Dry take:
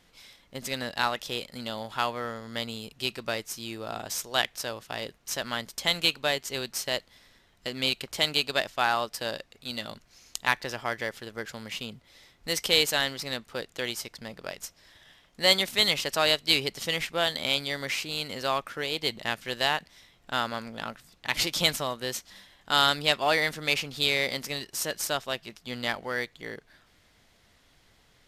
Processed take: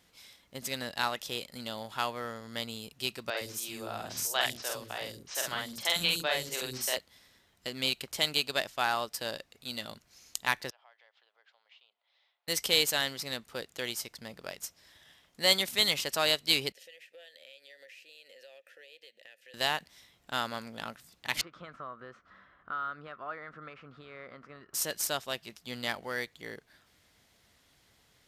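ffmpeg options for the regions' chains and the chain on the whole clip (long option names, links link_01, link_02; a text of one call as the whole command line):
ffmpeg -i in.wav -filter_complex "[0:a]asettb=1/sr,asplit=3[link_01][link_02][link_03];[link_01]atrim=end=3.304[link_04];[link_02]atrim=start=3.3:end=6.97,asetpts=PTS-STARTPTS,afade=type=in:duration=0.004:curve=qsin,afade=type=out:start_time=3.666:duration=0.004:curve=qsin,asplit=2[link_05][link_06];[link_06]adelay=47,volume=-2.5dB[link_07];[link_05][link_07]amix=inputs=2:normalize=0,atrim=end_sample=161847,acrossover=split=340|4800[link_08][link_09][link_10];[link_10]adelay=70[link_11];[link_08]adelay=110[link_12];[link_12][link_09][link_11]amix=inputs=3:normalize=0,atrim=end_sample=161847[link_13];[link_03]atrim=start=6.966[link_14];[link_04][link_13]acrossfade=duration=0.004:curve1=hsin:curve2=qsin[link_15];[link_15][link_14]acrossfade=duration=0.004:curve1=qsin:curve2=hsin,asettb=1/sr,asplit=3[link_16][link_17][link_18];[link_16]atrim=end=10.704[link_19];[link_17]atrim=start=10.7:end=12.48,asetpts=PTS-STARTPTS,afade=type=in:duration=0.004:curve=qsin,afade=type=out:start_time=1.776:duration=0.004:curve=qsin,equalizer=frequency=1800:width=0.4:gain=-13,acompressor=threshold=-49dB:ratio=4:attack=3.2:release=140:knee=1:detection=peak,asuperpass=centerf=1600:order=8:qfactor=0.53[link_20];[link_18]atrim=start=12.476[link_21];[link_19][link_20]acrossfade=duration=0.004:curve1=hsin:curve2=qsin[link_22];[link_22][link_21]acrossfade=duration=0.004:curve1=qsin:curve2=hsin,asettb=1/sr,asplit=3[link_23][link_24][link_25];[link_23]atrim=end=16.724[link_26];[link_24]atrim=start=16.72:end=19.54,asetpts=PTS-STARTPTS,afade=type=in:duration=0.004:curve=qsin,afade=type=out:start_time=2.816:duration=0.004:curve=qsin,asplit=3[link_27][link_28][link_29];[link_27]bandpass=frequency=530:width_type=q:width=8,volume=0dB[link_30];[link_28]bandpass=frequency=1840:width_type=q:width=8,volume=-6dB[link_31];[link_29]bandpass=frequency=2480:width_type=q:width=8,volume=-9dB[link_32];[link_30][link_31][link_32]amix=inputs=3:normalize=0,aemphasis=mode=production:type=riaa,acompressor=threshold=-47dB:ratio=4:attack=3.2:release=140:knee=1:detection=peak[link_33];[link_25]atrim=start=19.536[link_34];[link_26][link_33]acrossfade=duration=0.004:curve1=hsin:curve2=qsin[link_35];[link_35][link_34]acrossfade=duration=0.004:curve1=qsin:curve2=hsin,asettb=1/sr,asplit=3[link_36][link_37][link_38];[link_36]atrim=end=21.414[link_39];[link_37]atrim=start=21.41:end=24.74,asetpts=PTS-STARTPTS,afade=type=in:duration=0.004:curve=qsin,afade=type=out:start_time=3.326:duration=0.004:curve=qsin,acompressor=threshold=-47dB:ratio=2:attack=3.2:release=140:knee=1:detection=peak,lowpass=frequency=1300:width_type=q:width=5.6,equalizer=frequency=860:width_type=o:width=0.3:gain=-9.5[link_40];[link_38]atrim=start=24.736[link_41];[link_39][link_40]acrossfade=duration=0.004:curve1=hsin:curve2=qsin[link_42];[link_42][link_41]acrossfade=duration=0.004:curve1=qsin:curve2=hsin,highpass=47,highshelf=frequency=6700:gain=7,volume=-4.5dB" out.wav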